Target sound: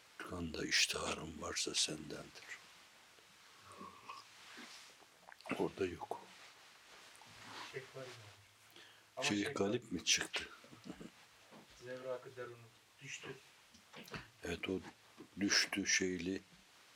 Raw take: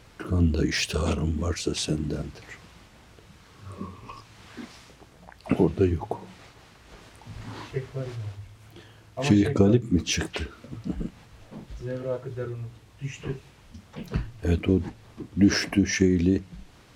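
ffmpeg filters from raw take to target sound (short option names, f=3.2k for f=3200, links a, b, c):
-af "highpass=f=1.4k:p=1,volume=-4.5dB"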